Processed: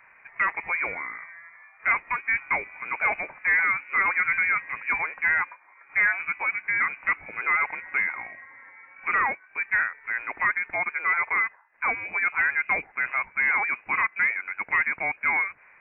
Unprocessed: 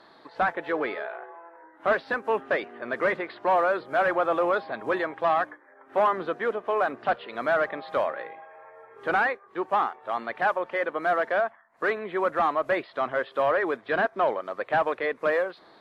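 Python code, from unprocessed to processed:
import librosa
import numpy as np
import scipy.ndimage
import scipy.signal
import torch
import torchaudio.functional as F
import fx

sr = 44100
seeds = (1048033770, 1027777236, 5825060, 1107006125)

y = fx.freq_invert(x, sr, carrier_hz=2700)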